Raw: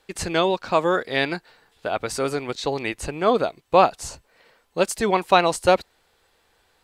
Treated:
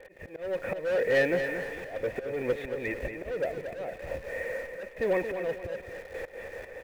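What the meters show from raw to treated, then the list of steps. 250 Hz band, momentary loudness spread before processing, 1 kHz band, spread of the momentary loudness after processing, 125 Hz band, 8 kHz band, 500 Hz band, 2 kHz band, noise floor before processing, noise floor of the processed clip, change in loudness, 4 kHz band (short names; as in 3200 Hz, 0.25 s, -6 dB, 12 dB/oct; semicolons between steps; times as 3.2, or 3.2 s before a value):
-10.5 dB, 11 LU, -21.0 dB, 14 LU, -9.0 dB, under -20 dB, -7.0 dB, -5.0 dB, -65 dBFS, -49 dBFS, -10.0 dB, -18.0 dB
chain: gate with hold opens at -52 dBFS; low shelf 250 Hz +4 dB; power-law curve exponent 0.35; AGC gain up to 12 dB; vocal tract filter e; in parallel at -11 dB: bit-crush 6-bit; on the sum: hard clip -11.5 dBFS, distortion -10 dB; auto swell 0.366 s; on a send: feedback echo 0.229 s, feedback 37%, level -8 dB; on the sum: gain -7.5 dB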